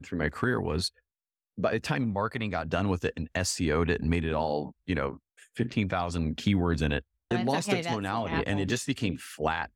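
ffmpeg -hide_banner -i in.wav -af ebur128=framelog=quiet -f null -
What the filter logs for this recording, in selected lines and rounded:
Integrated loudness:
  I:         -29.6 LUFS
  Threshold: -39.8 LUFS
Loudness range:
  LRA:         1.5 LU
  Threshold: -49.7 LUFS
  LRA low:   -30.5 LUFS
  LRA high:  -29.0 LUFS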